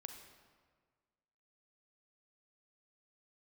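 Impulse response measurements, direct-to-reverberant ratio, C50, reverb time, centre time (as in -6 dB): 5.0 dB, 6.0 dB, 1.6 s, 34 ms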